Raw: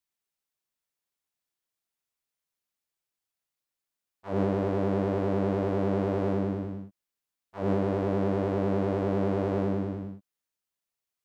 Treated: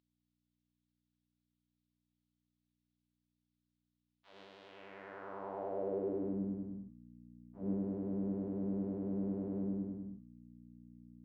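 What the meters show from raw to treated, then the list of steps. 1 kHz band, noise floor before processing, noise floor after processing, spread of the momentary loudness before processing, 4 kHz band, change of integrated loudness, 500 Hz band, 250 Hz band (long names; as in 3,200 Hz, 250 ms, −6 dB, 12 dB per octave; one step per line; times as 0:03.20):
−15.0 dB, below −85 dBFS, below −85 dBFS, 8 LU, below −10 dB, −11.0 dB, −13.5 dB, −9.5 dB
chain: hum removal 106.9 Hz, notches 39
mains hum 60 Hz, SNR 12 dB
band-pass filter sweep 3,600 Hz → 230 Hz, 0:04.63–0:06.40
level −4.5 dB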